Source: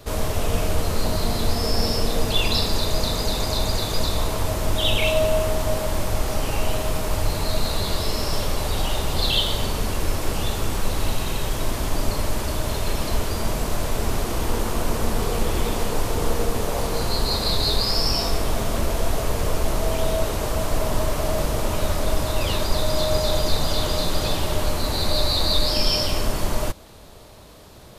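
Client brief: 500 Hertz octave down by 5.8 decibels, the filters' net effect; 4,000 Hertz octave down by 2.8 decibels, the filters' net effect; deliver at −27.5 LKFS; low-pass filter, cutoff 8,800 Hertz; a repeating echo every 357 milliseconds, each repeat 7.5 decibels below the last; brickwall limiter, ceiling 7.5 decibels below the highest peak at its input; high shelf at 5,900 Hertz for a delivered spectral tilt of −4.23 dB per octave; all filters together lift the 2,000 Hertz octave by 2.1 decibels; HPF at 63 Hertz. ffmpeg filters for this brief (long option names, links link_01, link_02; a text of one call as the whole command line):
ffmpeg -i in.wav -af "highpass=63,lowpass=8800,equalizer=frequency=500:width_type=o:gain=-8,equalizer=frequency=2000:width_type=o:gain=4.5,equalizer=frequency=4000:width_type=o:gain=-7,highshelf=frequency=5900:gain=7,alimiter=limit=-18.5dB:level=0:latency=1,aecho=1:1:357|714|1071|1428|1785:0.422|0.177|0.0744|0.0312|0.0131" out.wav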